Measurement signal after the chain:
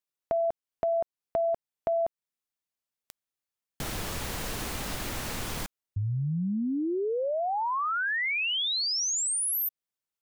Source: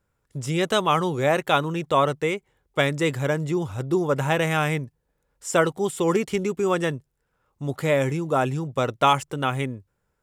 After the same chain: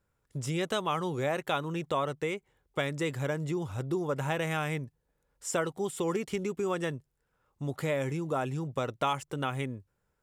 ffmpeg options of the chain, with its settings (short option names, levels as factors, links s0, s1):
-af "acompressor=threshold=0.0398:ratio=2,volume=0.668"